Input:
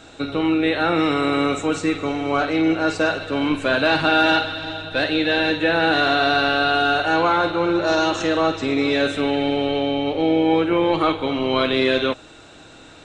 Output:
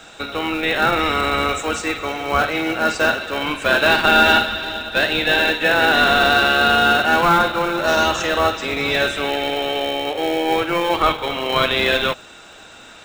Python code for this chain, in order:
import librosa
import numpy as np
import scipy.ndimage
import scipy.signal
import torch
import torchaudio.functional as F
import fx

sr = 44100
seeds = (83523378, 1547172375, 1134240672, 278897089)

p1 = scipy.signal.sosfilt(scipy.signal.butter(2, 680.0, 'highpass', fs=sr, output='sos'), x)
p2 = fx.notch(p1, sr, hz=4200.0, q=11.0)
p3 = fx.sample_hold(p2, sr, seeds[0], rate_hz=1200.0, jitter_pct=0)
p4 = p2 + F.gain(torch.from_numpy(p3), -9.5).numpy()
y = F.gain(torch.from_numpy(p4), 5.0).numpy()